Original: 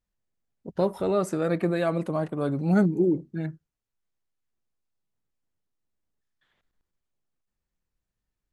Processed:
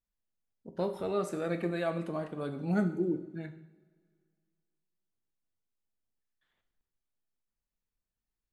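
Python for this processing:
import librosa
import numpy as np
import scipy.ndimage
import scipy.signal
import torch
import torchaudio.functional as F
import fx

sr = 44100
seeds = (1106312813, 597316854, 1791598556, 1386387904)

y = fx.dynamic_eq(x, sr, hz=2700.0, q=0.88, threshold_db=-47.0, ratio=4.0, max_db=4)
y = fx.rev_double_slope(y, sr, seeds[0], early_s=0.59, late_s=2.1, knee_db=-19, drr_db=6.5)
y = y * 10.0 ** (-8.5 / 20.0)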